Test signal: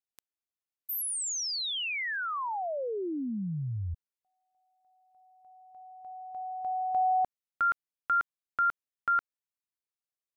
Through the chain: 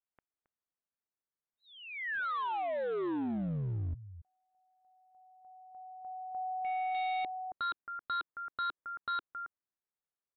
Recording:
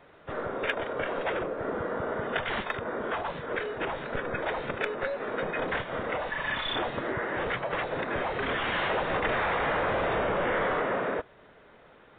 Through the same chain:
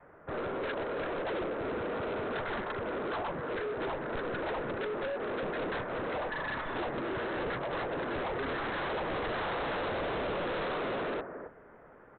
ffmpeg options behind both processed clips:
ffmpeg -i in.wav -af "lowpass=frequency=1800:width=0.5412,lowpass=frequency=1800:width=1.3066,aecho=1:1:271:0.178,adynamicequalizer=threshold=0.00562:dfrequency=340:dqfactor=1.8:tfrequency=340:tqfactor=1.8:attack=5:release=100:ratio=0.417:range=2.5:mode=boostabove:tftype=bell,aresample=8000,asoftclip=type=hard:threshold=-32.5dB,aresample=44100" out.wav

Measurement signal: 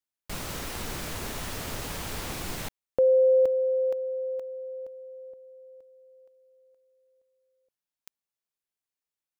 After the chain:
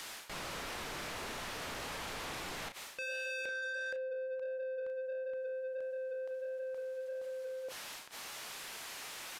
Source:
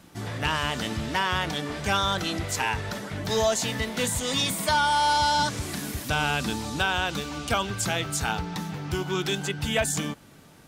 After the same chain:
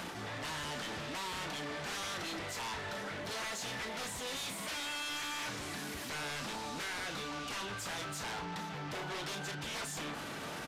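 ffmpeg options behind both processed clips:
ffmpeg -i in.wav -filter_complex "[0:a]highshelf=frequency=4800:gain=-6.5,asplit=2[link_01][link_02];[link_02]acompressor=mode=upward:threshold=-34dB:ratio=4:attack=2.3:release=47:knee=2.83:detection=peak,volume=0.5dB[link_03];[link_01][link_03]amix=inputs=2:normalize=0,aeval=exprs='0.0891*(abs(mod(val(0)/0.0891+3,4)-2)-1)':channel_layout=same,areverse,acompressor=threshold=-39dB:ratio=16:attack=0.16:release=138:knee=6:detection=rms,areverse,flanger=delay=4.3:depth=2.6:regen=-87:speed=1.5:shape=sinusoidal,asplit=2[link_04][link_05];[link_05]adelay=34,volume=-10dB[link_06];[link_04][link_06]amix=inputs=2:normalize=0,asplit=2[link_07][link_08];[link_08]highpass=frequency=720:poles=1,volume=17dB,asoftclip=type=tanh:threshold=-38dB[link_09];[link_07][link_09]amix=inputs=2:normalize=0,lowpass=frequency=6400:poles=1,volume=-6dB,aresample=32000,aresample=44100,volume=4.5dB" out.wav

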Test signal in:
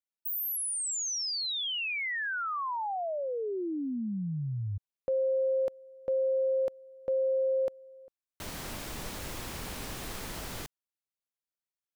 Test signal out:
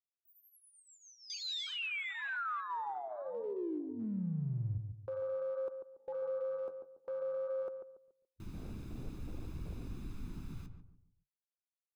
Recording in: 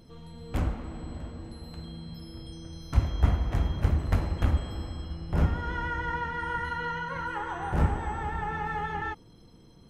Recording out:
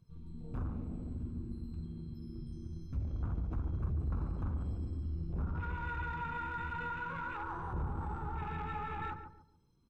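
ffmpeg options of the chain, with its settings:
ffmpeg -i in.wav -filter_complex "[0:a]acrossover=split=4800[link_01][link_02];[link_02]acompressor=threshold=-48dB:ratio=4:attack=1:release=60[link_03];[link_01][link_03]amix=inputs=2:normalize=0,afwtdn=0.0178,aecho=1:1:0.8:0.55,flanger=delay=1.8:depth=9.3:regen=-57:speed=0.52:shape=sinusoidal,acompressor=threshold=-36dB:ratio=3:attack=0.22:release=35:knee=1:detection=peak,asplit=2[link_04][link_05];[link_05]adelay=142,lowpass=frequency=940:poles=1,volume=-6dB,asplit=2[link_06][link_07];[link_07]adelay=142,lowpass=frequency=940:poles=1,volume=0.36,asplit=2[link_08][link_09];[link_09]adelay=142,lowpass=frequency=940:poles=1,volume=0.36,asplit=2[link_10][link_11];[link_11]adelay=142,lowpass=frequency=940:poles=1,volume=0.36[link_12];[link_04][link_06][link_08][link_10][link_12]amix=inputs=5:normalize=0" out.wav

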